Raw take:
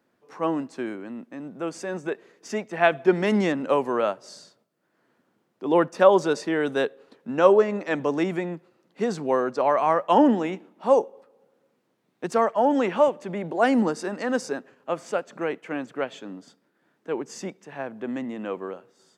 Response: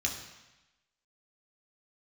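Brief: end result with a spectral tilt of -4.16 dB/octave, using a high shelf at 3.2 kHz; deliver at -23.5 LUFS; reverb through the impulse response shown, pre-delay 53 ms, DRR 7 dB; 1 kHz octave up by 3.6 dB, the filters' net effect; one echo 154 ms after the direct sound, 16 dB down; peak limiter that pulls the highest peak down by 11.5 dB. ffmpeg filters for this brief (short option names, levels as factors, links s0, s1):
-filter_complex "[0:a]equalizer=f=1000:t=o:g=4,highshelf=f=3200:g=5,alimiter=limit=0.251:level=0:latency=1,aecho=1:1:154:0.158,asplit=2[s0][s1];[1:a]atrim=start_sample=2205,adelay=53[s2];[s1][s2]afir=irnorm=-1:irlink=0,volume=0.251[s3];[s0][s3]amix=inputs=2:normalize=0,volume=1.19"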